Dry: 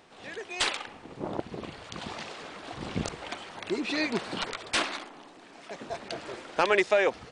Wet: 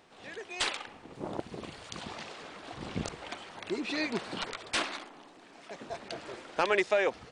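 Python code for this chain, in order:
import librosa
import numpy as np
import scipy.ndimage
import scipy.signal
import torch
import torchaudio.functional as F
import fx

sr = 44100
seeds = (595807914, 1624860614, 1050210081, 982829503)

y = fx.high_shelf(x, sr, hz=fx.line((1.13, 8200.0), (2.0, 5200.0)), db=10.0, at=(1.13, 2.0), fade=0.02)
y = y * librosa.db_to_amplitude(-3.5)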